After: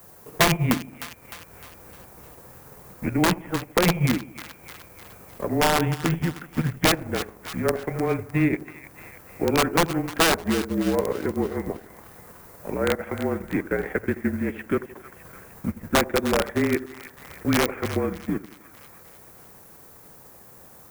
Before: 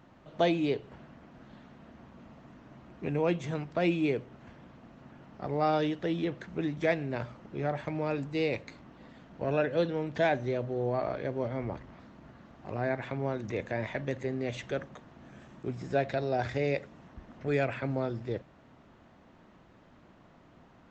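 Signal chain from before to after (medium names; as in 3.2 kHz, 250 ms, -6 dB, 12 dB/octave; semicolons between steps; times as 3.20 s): mistuned SSB -170 Hz 280–2700 Hz; added noise violet -58 dBFS; integer overflow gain 21.5 dB; on a send: two-band feedback delay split 930 Hz, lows 81 ms, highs 305 ms, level -10 dB; on the sum: transient shaper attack +4 dB, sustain -8 dB; trim +7.5 dB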